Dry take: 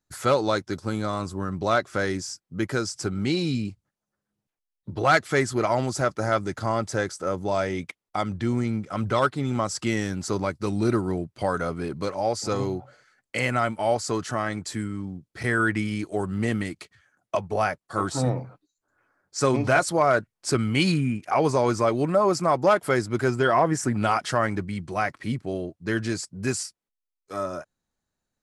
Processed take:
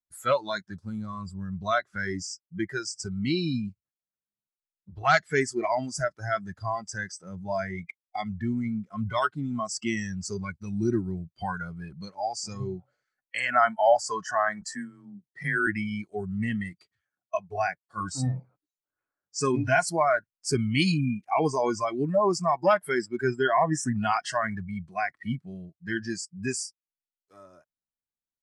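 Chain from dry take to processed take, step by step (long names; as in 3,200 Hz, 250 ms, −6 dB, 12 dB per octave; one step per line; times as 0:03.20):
0:13.18–0:15.13: gain on a spectral selection 500–1,900 Hz +6 dB
0:14.61–0:15.67: frequency shifter +24 Hz
noise reduction from a noise print of the clip's start 20 dB
level −1.5 dB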